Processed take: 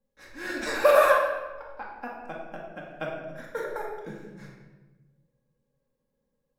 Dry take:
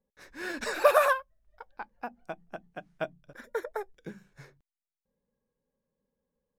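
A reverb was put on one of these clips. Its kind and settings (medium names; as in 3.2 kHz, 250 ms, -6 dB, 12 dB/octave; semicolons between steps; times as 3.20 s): simulated room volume 750 m³, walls mixed, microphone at 2.2 m; trim -1.5 dB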